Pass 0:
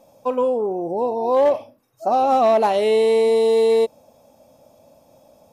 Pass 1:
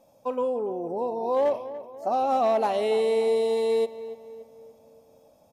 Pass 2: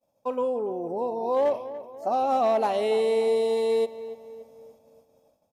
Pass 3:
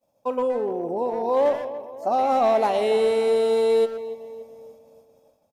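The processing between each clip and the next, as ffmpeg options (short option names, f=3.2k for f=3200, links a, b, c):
-filter_complex "[0:a]asplit=2[a][b];[b]adelay=288,lowpass=f=2.4k:p=1,volume=-13.5dB,asplit=2[c][d];[d]adelay=288,lowpass=f=2.4k:p=1,volume=0.51,asplit=2[e][f];[f]adelay=288,lowpass=f=2.4k:p=1,volume=0.51,asplit=2[g][h];[h]adelay=288,lowpass=f=2.4k:p=1,volume=0.51,asplit=2[i][j];[j]adelay=288,lowpass=f=2.4k:p=1,volume=0.51[k];[a][c][e][g][i][k]amix=inputs=6:normalize=0,volume=-7dB"
-af "agate=range=-33dB:threshold=-50dB:ratio=3:detection=peak"
-filter_complex "[0:a]asplit=2[a][b];[b]adelay=120,highpass=300,lowpass=3.4k,asoftclip=type=hard:threshold=-25.5dB,volume=-9dB[c];[a][c]amix=inputs=2:normalize=0,volume=3dB"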